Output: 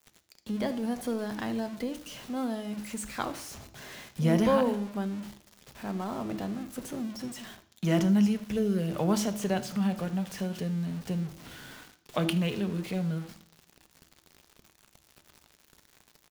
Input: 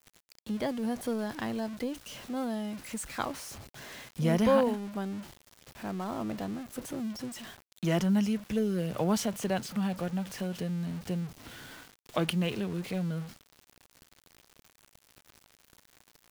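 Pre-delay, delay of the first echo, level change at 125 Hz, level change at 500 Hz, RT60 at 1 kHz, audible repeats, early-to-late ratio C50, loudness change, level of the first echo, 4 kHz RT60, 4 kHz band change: 3 ms, 77 ms, +2.5 dB, +0.5 dB, 0.55 s, 1, 14.0 dB, +1.5 dB, -20.0 dB, 0.65 s, +0.5 dB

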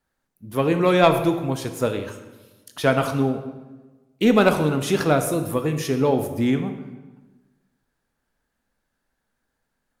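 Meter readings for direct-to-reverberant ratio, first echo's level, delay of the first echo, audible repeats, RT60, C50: 7.5 dB, no echo, no echo, no echo, 1.2 s, 9.0 dB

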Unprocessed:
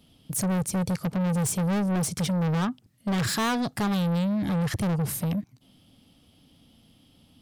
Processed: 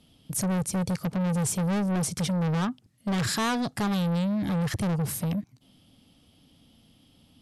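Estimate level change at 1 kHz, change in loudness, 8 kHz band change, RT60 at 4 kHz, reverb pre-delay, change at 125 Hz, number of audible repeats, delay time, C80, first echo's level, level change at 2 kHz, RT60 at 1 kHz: -1.0 dB, -1.0 dB, -0.5 dB, no reverb, no reverb, -1.0 dB, no echo, no echo, no reverb, no echo, -1.0 dB, no reverb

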